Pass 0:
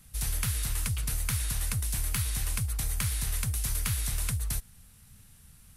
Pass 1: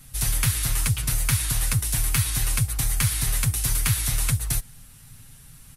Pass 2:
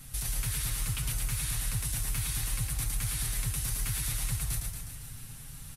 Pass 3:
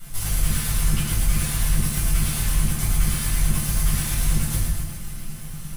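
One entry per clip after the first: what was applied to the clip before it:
comb 7.4 ms; gain +6.5 dB
limiter -20 dBFS, peak gain reduction 11 dB; compressor 4:1, threshold -31 dBFS, peak gain reduction 6.5 dB; on a send: reverse bouncing-ball echo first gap 0.11 s, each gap 1.1×, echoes 5
minimum comb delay 5.8 ms; shoebox room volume 660 m³, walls furnished, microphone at 7.1 m

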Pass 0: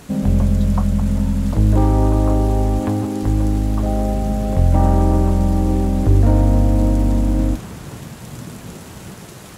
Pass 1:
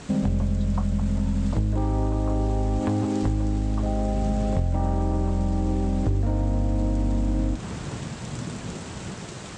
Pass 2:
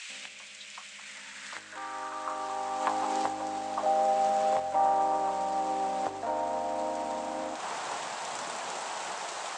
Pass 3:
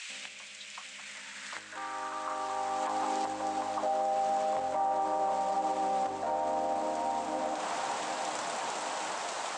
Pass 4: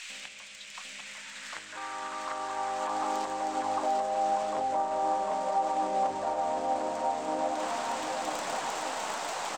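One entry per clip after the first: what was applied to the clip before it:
elliptic low-pass 8300 Hz, stop band 50 dB; compressor, threshold -21 dBFS, peak gain reduction 12 dB; gain +1 dB
high-pass sweep 2400 Hz -> 790 Hz, 0.82–3.28; gain +2 dB
tape echo 0.751 s, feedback 72%, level -8 dB, low-pass 1500 Hz; limiter -23 dBFS, peak gain reduction 10.5 dB
tracing distortion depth 0.024 ms; echo 0.749 s -4 dB

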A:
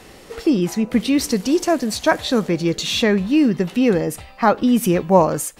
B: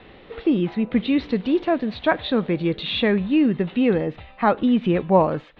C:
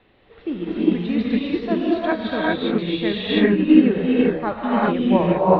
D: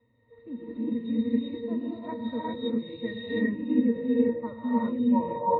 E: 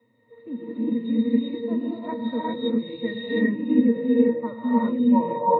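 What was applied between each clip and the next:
Chebyshev low-pass 3800 Hz, order 5; gain -2.5 dB
non-linear reverb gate 0.43 s rising, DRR -6.5 dB; upward expander 1.5:1, over -24 dBFS; gain -2.5 dB
octave resonator A#, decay 0.12 s
HPF 140 Hz 24 dB/oct; gain +5 dB

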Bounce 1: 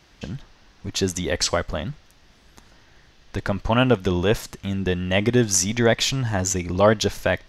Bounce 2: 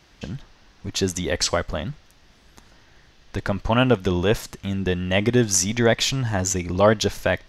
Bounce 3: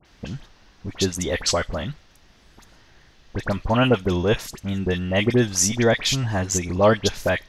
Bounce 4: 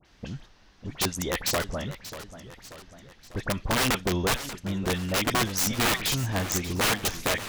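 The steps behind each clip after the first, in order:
nothing audible
dispersion highs, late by 54 ms, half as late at 2100 Hz
wrapped overs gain 14 dB; warbling echo 0.59 s, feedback 54%, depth 165 cents, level -13.5 dB; gain -4.5 dB

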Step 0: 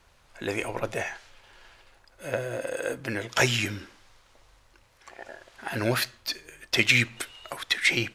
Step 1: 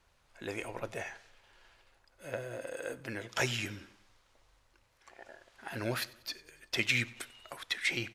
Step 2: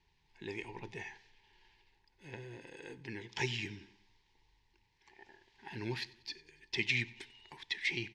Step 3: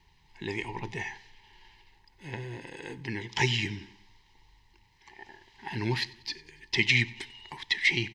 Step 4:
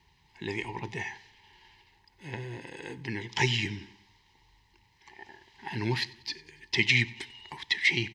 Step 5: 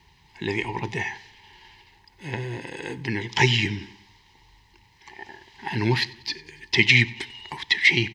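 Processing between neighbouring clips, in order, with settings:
feedback echo 94 ms, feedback 53%, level -22.5 dB; gain -9 dB
EQ curve 110 Hz 0 dB, 170 Hz +5 dB, 250 Hz -2 dB, 410 Hz +3 dB, 600 Hz -24 dB, 890 Hz +5 dB, 1300 Hz -21 dB, 1800 Hz +1 dB, 5100 Hz 0 dB, 15000 Hz -29 dB; gain -3.5 dB
comb 1 ms, depth 32%; gain +9 dB
HPF 49 Hz
dynamic EQ 8700 Hz, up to -4 dB, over -49 dBFS, Q 0.72; gain +7.5 dB

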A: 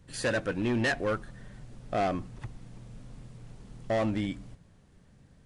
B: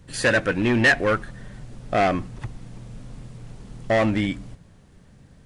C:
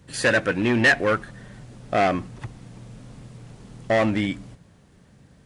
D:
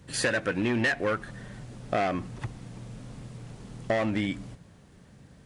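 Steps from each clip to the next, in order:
dynamic EQ 2000 Hz, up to +6 dB, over -46 dBFS, Q 1.3; gain +7.5 dB
HPF 89 Hz 6 dB/oct
compressor 5:1, threshold -24 dBFS, peak gain reduction 10 dB

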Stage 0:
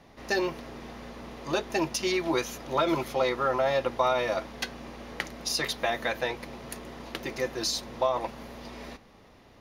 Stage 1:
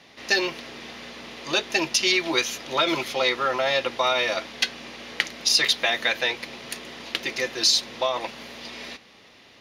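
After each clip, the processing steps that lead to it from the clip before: weighting filter D; gain +1 dB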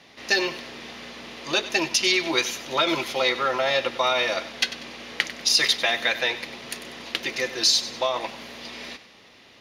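thinning echo 96 ms, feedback 41%, level -14 dB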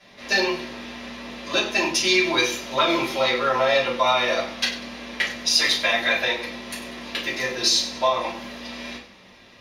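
shoebox room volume 190 m³, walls furnished, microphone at 5.5 m; gain -8.5 dB

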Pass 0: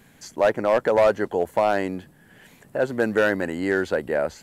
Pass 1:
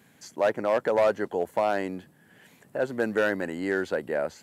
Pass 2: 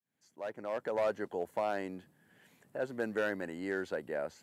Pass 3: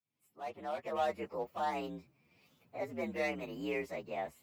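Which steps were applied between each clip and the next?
HPF 110 Hz 12 dB/oct; gain -4.5 dB
opening faded in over 1.15 s; gain -8.5 dB
inharmonic rescaling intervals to 118%

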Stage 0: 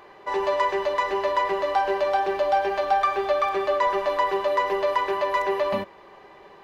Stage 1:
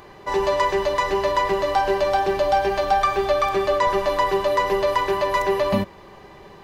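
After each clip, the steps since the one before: tone controls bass +14 dB, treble +9 dB; gain +2 dB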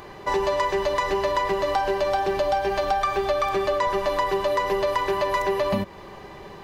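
compressor 4:1, threshold -24 dBFS, peak gain reduction 8.5 dB; gain +3 dB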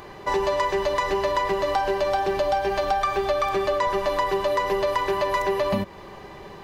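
nothing audible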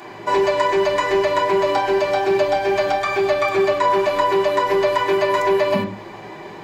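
reverb RT60 0.40 s, pre-delay 3 ms, DRR -7.5 dB

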